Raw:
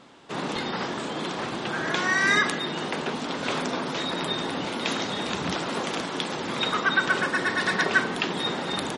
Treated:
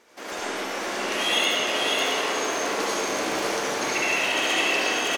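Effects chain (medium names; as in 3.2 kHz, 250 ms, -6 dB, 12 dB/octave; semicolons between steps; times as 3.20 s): delay 954 ms -3 dB; reverberation RT60 4.0 s, pre-delay 85 ms, DRR -7 dB; speed mistake 45 rpm record played at 78 rpm; trim -7.5 dB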